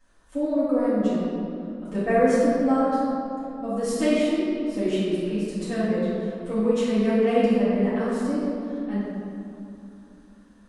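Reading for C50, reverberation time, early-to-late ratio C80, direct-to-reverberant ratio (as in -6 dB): -4.0 dB, 2.8 s, -1.5 dB, -14.0 dB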